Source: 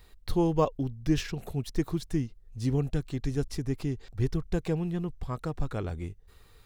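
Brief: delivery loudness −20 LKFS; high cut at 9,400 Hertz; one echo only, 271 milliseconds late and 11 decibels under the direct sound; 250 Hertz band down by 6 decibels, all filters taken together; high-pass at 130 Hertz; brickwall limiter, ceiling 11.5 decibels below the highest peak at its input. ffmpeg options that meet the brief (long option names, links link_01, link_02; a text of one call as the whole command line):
ffmpeg -i in.wav -af "highpass=130,lowpass=9400,equalizer=frequency=250:width_type=o:gain=-9,alimiter=level_in=1.5dB:limit=-24dB:level=0:latency=1,volume=-1.5dB,aecho=1:1:271:0.282,volume=18dB" out.wav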